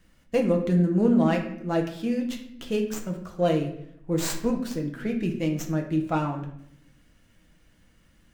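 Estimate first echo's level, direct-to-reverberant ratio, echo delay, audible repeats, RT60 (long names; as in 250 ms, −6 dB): no echo audible, 1.5 dB, no echo audible, no echo audible, 0.75 s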